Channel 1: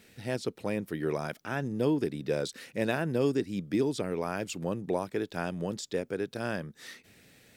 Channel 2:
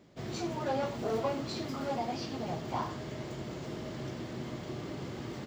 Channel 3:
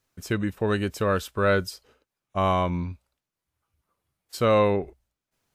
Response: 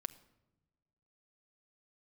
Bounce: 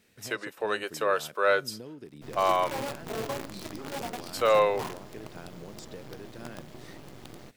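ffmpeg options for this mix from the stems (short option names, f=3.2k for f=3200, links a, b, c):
-filter_complex "[0:a]acompressor=threshold=-33dB:ratio=6,volume=-7.5dB[a];[1:a]acrusher=bits=6:dc=4:mix=0:aa=0.000001,adelay=2050,volume=-3dB[b];[2:a]highpass=f=460:w=0.5412,highpass=f=460:w=1.3066,volume=-1.5dB,asplit=2[c][d];[d]volume=-13.5dB[e];[3:a]atrim=start_sample=2205[f];[e][f]afir=irnorm=-1:irlink=0[g];[a][b][c][g]amix=inputs=4:normalize=0"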